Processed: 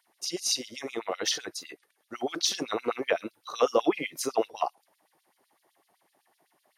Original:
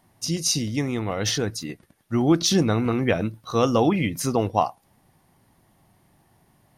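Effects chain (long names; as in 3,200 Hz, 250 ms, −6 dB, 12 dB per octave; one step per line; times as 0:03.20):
auto-filter high-pass sine 7.9 Hz 360–4,400 Hz
level −6 dB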